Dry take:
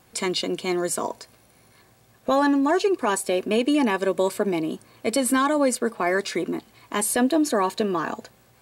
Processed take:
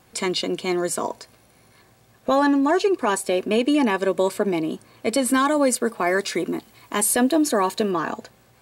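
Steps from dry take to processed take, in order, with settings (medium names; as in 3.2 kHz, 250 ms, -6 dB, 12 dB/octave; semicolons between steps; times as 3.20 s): treble shelf 8.3 kHz -3 dB, from 5.34 s +5 dB, from 7.91 s -3.5 dB; trim +1.5 dB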